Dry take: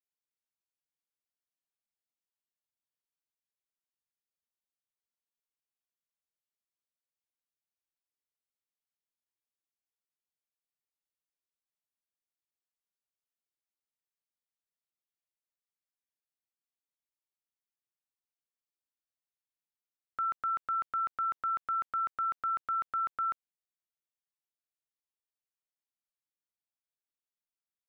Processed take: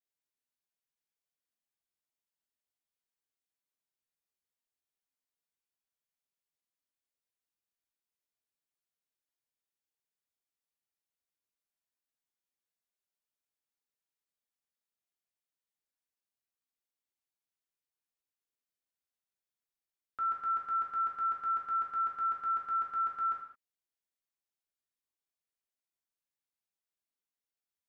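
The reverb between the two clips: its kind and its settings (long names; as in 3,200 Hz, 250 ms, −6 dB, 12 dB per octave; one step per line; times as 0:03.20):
reverb whose tail is shaped and stops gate 240 ms falling, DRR −3 dB
level −6 dB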